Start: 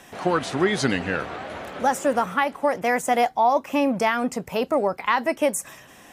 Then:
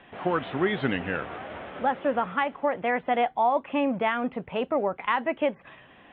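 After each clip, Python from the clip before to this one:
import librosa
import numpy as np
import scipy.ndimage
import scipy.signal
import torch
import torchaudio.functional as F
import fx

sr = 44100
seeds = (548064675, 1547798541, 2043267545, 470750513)

y = scipy.signal.sosfilt(scipy.signal.butter(12, 3500.0, 'lowpass', fs=sr, output='sos'), x)
y = F.gain(torch.from_numpy(y), -4.0).numpy()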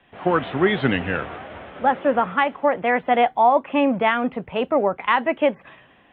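y = fx.band_widen(x, sr, depth_pct=40)
y = F.gain(torch.from_numpy(y), 6.5).numpy()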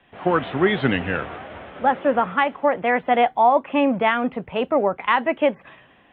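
y = x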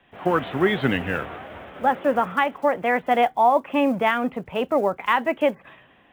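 y = fx.block_float(x, sr, bits=7)
y = F.gain(torch.from_numpy(y), -1.5).numpy()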